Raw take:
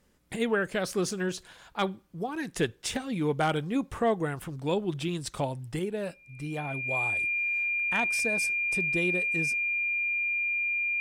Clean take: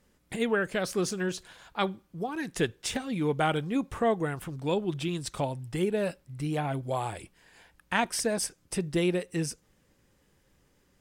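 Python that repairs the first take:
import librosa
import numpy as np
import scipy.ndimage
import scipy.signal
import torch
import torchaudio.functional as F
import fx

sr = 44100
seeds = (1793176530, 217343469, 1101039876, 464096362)

y = fx.fix_declip(x, sr, threshold_db=-17.0)
y = fx.notch(y, sr, hz=2400.0, q=30.0)
y = fx.gain(y, sr, db=fx.steps((0.0, 0.0), (5.79, 4.5)))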